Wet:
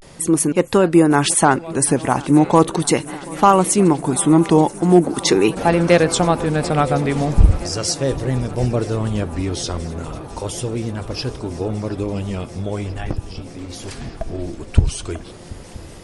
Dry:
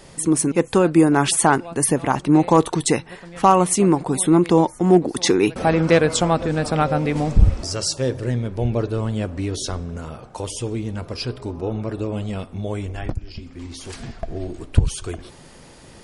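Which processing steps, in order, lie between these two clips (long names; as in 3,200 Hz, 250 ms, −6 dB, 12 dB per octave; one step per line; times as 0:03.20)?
pitch vibrato 0.39 Hz 82 cents
feedback echo with a long and a short gap by turns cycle 976 ms, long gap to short 3 to 1, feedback 79%, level −22 dB
level +2 dB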